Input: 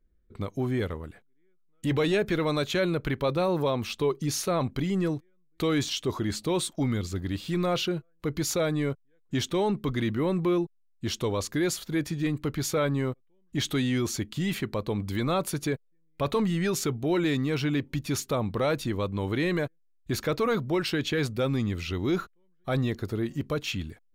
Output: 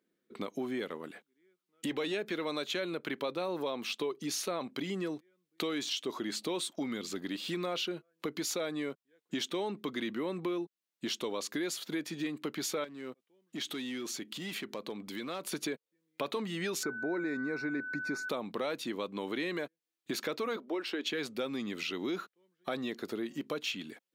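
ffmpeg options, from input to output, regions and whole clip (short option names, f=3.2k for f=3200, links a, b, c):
-filter_complex "[0:a]asettb=1/sr,asplit=3[a][b][c];[a]atrim=end=12.844[d];[b]atrim=start=12.84:end=15.52,asetpts=PTS-STARTPTS,afade=t=in:d=0.004:c=qsin,afade=t=out:st=2.676:d=0.004:c=qsin,acompressor=threshold=-43dB:ratio=2:attack=3.2:release=140:knee=1:detection=peak,aeval=exprs='0.0266*(abs(mod(val(0)/0.0266+3,4)-2)-1)':c=same[e];[c]atrim=start=15.516[f];[d][e]acrossfade=d=0.004:c1=hsin:c2=qsin[g];[g][f]acrossfade=d=0.004:c1=qsin:c2=hsin,asettb=1/sr,asplit=3[h][i][j];[h]atrim=end=16.834[k];[i]atrim=start=16.83:end=18.29,asetpts=PTS-STARTPTS,afade=t=in:d=0.004:c=qsin,afade=t=out:st=1.456:d=0.004:c=qsin,aemphasis=mode=reproduction:type=75fm,aeval=exprs='val(0)+0.0224*sin(2*PI*1500*n/s)':c=same,asuperstop=centerf=3100:order=4:qfactor=1.5[l];[j]atrim=start=18.286[m];[k][l]acrossfade=d=0.004:c1=hsin:c2=qsin[n];[n][m]acrossfade=d=0.004:c1=qsin:c2=hsin,asettb=1/sr,asplit=3[o][p][q];[o]atrim=end=20.564[r];[p]atrim=start=20.56:end=21.06,asetpts=PTS-STARTPTS,afade=t=in:d=0.004:c=qsin,afade=t=out:st=0.496:d=0.004:c=qsin,highpass=f=260:w=0.5412,highpass=f=260:w=1.3066,highshelf=f=2.5k:g=-9.5[s];[q]atrim=start=21.056[t];[r][s]acrossfade=d=0.004:c1=hsin:c2=qsin[u];[u][t]acrossfade=d=0.004:c1=qsin:c2=hsin,highpass=f=220:w=0.5412,highpass=f=220:w=1.3066,equalizer=f=3.2k:w=0.95:g=4.5,acompressor=threshold=-38dB:ratio=3,volume=2.5dB"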